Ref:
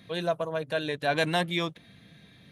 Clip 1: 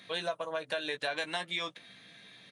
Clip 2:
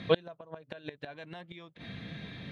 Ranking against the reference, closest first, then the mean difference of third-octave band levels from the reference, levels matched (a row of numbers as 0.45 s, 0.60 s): 1, 2; 6.0 dB, 11.5 dB